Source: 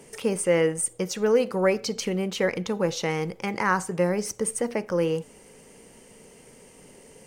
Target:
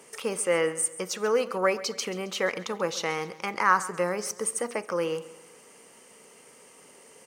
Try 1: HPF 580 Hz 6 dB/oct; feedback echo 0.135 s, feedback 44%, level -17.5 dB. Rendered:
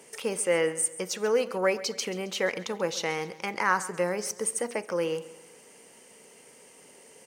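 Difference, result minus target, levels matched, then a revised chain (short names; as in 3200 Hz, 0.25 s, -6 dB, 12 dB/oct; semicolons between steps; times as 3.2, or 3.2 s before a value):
1000 Hz band -3.0 dB
HPF 580 Hz 6 dB/oct; bell 1200 Hz +7.5 dB 0.38 oct; feedback echo 0.135 s, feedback 44%, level -17.5 dB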